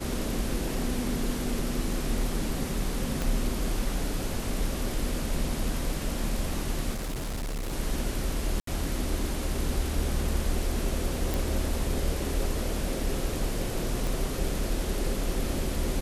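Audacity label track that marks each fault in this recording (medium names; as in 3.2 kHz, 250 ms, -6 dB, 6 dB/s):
3.220000	3.220000	pop
6.920000	7.740000	clipped -29 dBFS
8.600000	8.670000	dropout 73 ms
11.340000	11.340000	pop
14.070000	14.070000	pop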